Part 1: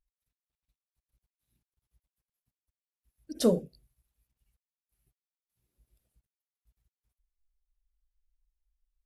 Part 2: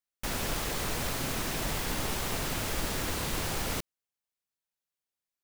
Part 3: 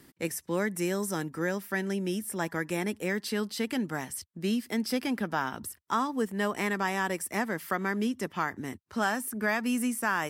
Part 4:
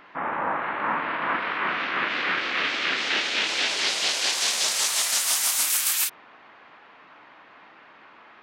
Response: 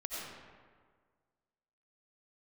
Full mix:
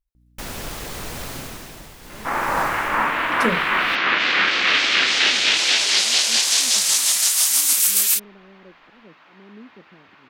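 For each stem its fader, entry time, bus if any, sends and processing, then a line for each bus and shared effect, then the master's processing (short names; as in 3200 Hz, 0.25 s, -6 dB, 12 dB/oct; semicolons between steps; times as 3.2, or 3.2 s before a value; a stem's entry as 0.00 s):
-1.0 dB, 0.00 s, no send, low shelf 220 Hz +6 dB
+1.0 dB, 0.15 s, no send, hum 60 Hz, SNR 24 dB; auto duck -12 dB, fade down 0.60 s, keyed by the first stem
-13.0 dB, 1.55 s, no send, steep low-pass 600 Hz; auto swell 0.169 s
0.0 dB, 2.10 s, no send, high shelf 3000 Hz +11.5 dB; vocal rider within 4 dB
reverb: off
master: dry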